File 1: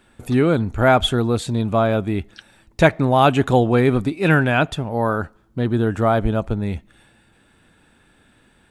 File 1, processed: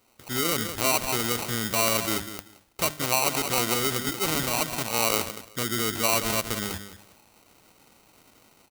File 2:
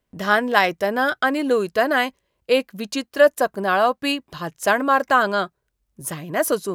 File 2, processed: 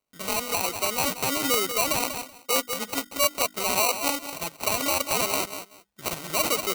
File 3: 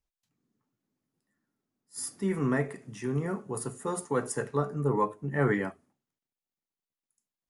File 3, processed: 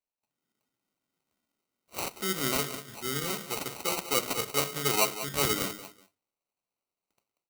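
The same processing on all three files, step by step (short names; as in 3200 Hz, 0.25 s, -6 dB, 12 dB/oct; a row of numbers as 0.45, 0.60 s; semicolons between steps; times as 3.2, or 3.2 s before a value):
AGC gain up to 7.5 dB; bell 7700 Hz +6 dB 0.31 oct; notches 50/100/150/200/250/300 Hz; on a send: feedback echo 0.188 s, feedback 18%, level -12.5 dB; on the sum: limiter -9.5 dBFS; sample-rate reducer 1700 Hz, jitter 0%; tilt +3 dB/oct; crackling interface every 0.17 s, samples 64, repeat, from 0.52; gain -6.5 dB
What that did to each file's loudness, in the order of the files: -6.5, -5.0, +1.5 LU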